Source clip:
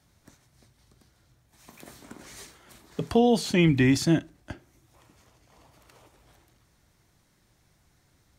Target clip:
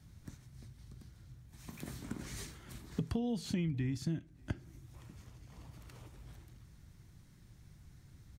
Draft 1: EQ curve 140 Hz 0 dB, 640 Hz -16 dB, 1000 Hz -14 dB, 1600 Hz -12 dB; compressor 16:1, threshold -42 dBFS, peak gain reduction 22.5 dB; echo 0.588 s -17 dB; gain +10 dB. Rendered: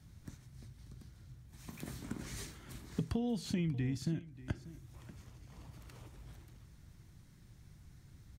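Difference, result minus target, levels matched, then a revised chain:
echo-to-direct +12 dB
EQ curve 140 Hz 0 dB, 640 Hz -16 dB, 1000 Hz -14 dB, 1600 Hz -12 dB; compressor 16:1, threshold -42 dBFS, peak gain reduction 22.5 dB; echo 0.588 s -29 dB; gain +10 dB

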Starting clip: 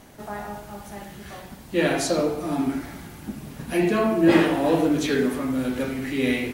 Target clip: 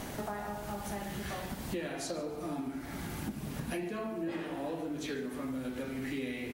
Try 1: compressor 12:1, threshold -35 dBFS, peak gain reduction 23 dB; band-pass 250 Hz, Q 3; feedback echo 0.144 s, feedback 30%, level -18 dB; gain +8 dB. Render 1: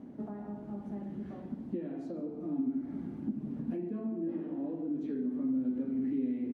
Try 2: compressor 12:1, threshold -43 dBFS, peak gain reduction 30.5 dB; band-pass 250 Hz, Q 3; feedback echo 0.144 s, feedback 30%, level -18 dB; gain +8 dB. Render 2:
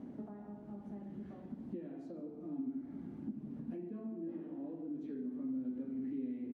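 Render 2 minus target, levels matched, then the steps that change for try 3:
250 Hz band +3.0 dB
remove: band-pass 250 Hz, Q 3

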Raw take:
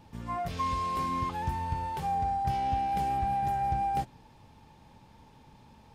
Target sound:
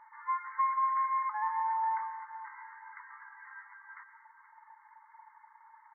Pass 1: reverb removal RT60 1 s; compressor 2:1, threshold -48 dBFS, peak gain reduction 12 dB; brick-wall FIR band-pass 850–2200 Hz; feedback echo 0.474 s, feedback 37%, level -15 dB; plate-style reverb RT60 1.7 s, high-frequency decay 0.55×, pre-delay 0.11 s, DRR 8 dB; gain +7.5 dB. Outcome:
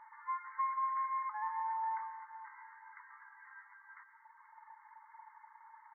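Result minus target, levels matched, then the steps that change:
compressor: peak gain reduction +5.5 dB
change: compressor 2:1, threshold -36.5 dBFS, peak gain reduction 6 dB

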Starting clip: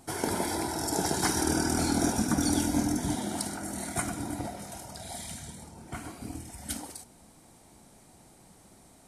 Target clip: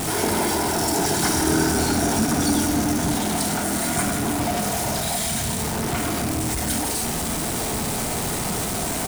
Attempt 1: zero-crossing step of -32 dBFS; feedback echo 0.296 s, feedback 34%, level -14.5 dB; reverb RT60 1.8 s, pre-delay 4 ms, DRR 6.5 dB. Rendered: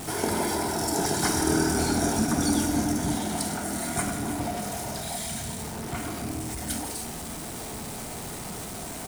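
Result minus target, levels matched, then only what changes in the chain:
zero-crossing step: distortion -7 dB
change: zero-crossing step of -20.5 dBFS

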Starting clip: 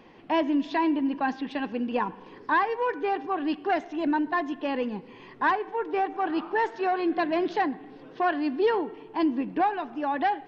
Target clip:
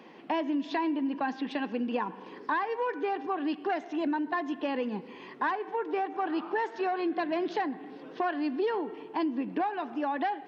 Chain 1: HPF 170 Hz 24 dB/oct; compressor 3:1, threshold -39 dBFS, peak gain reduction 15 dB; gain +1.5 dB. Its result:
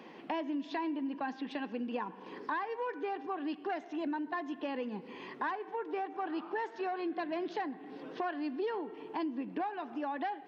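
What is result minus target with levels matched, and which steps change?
compressor: peak gain reduction +6 dB
change: compressor 3:1, threshold -30 dBFS, peak gain reduction 9 dB

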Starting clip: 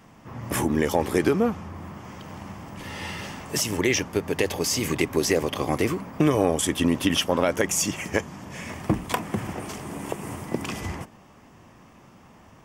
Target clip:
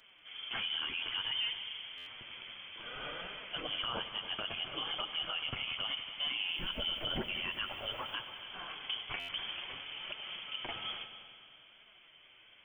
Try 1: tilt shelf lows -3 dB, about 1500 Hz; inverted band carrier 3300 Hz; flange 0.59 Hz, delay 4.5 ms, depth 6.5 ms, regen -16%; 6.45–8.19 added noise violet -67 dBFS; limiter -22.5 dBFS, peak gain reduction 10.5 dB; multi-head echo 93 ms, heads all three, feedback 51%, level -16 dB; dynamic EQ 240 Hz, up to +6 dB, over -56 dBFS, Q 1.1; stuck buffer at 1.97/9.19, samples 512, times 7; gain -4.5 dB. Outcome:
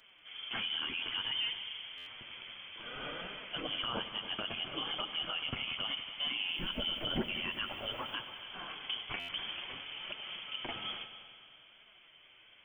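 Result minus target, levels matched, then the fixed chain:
250 Hz band +4.5 dB
tilt shelf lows -3 dB, about 1500 Hz; inverted band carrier 3300 Hz; flange 0.59 Hz, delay 4.5 ms, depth 6.5 ms, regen -16%; 6.45–8.19 added noise violet -67 dBFS; limiter -22.5 dBFS, peak gain reduction 10.5 dB; multi-head echo 93 ms, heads all three, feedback 51%, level -16 dB; stuck buffer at 1.97/9.19, samples 512, times 7; gain -4.5 dB

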